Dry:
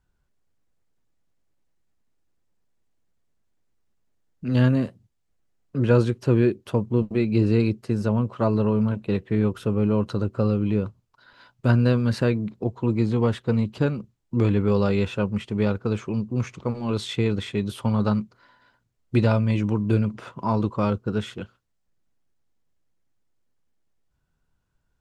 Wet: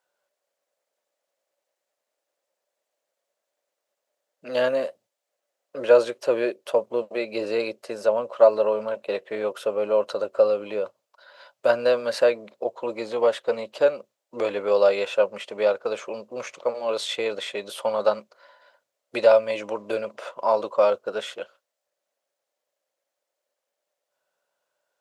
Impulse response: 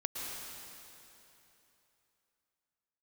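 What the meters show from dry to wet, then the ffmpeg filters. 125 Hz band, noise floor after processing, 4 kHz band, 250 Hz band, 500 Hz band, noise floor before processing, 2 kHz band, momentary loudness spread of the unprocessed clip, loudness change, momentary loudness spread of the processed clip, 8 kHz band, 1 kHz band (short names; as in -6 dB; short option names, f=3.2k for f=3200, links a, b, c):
under -25 dB, -84 dBFS, +3.5 dB, -14.5 dB, +6.0 dB, -73 dBFS, +2.5 dB, 8 LU, -0.5 dB, 14 LU, n/a, +3.5 dB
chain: -af "highpass=f=570:t=q:w=7,tiltshelf=f=1.2k:g=-4"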